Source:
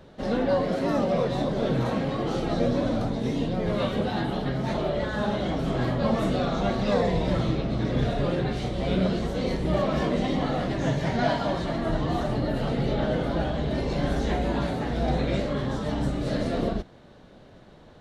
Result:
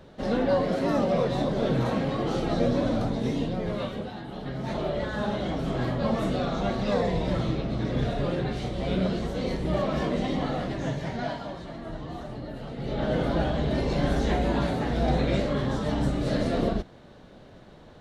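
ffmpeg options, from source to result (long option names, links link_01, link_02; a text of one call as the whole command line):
ffmpeg -i in.wav -af "volume=21.5dB,afade=type=out:start_time=3.25:duration=0.97:silence=0.251189,afade=type=in:start_time=4.22:duration=0.62:silence=0.316228,afade=type=out:start_time=10.46:duration=1.09:silence=0.375837,afade=type=in:start_time=12.76:duration=0.45:silence=0.266073" out.wav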